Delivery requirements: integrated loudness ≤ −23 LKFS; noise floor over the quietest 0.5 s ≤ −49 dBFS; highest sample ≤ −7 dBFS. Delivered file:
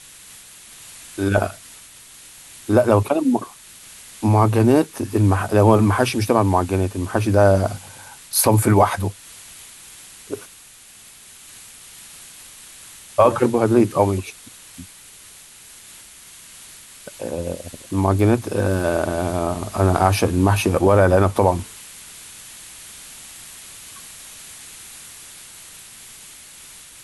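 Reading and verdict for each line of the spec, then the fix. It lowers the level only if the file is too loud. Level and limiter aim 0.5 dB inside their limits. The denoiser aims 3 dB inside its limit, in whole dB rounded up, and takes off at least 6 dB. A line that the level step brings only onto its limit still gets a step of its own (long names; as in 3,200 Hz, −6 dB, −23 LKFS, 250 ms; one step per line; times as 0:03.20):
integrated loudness −18.5 LKFS: out of spec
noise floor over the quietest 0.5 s −45 dBFS: out of spec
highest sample −3.0 dBFS: out of spec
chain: level −5 dB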